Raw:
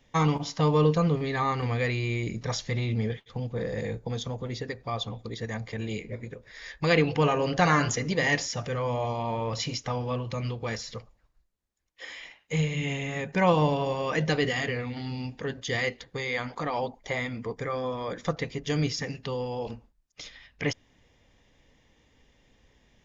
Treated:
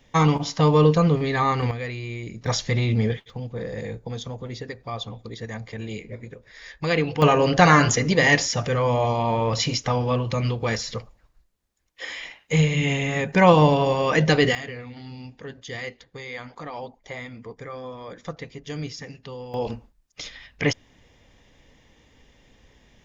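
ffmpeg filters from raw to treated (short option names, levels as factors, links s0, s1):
-af "asetnsamples=n=441:p=0,asendcmd='1.71 volume volume -3.5dB;2.46 volume volume 6.5dB;3.3 volume volume 0dB;7.22 volume volume 7.5dB;14.55 volume volume -5dB;19.54 volume volume 6.5dB',volume=1.88"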